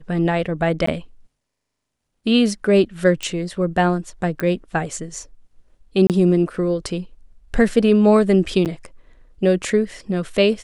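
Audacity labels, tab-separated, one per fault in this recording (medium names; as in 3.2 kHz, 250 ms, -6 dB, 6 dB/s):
0.860000	0.870000	dropout 14 ms
3.230000	3.230000	pop -14 dBFS
4.400000	4.400000	pop -12 dBFS
6.070000	6.100000	dropout 28 ms
8.650000	8.660000	dropout 8.4 ms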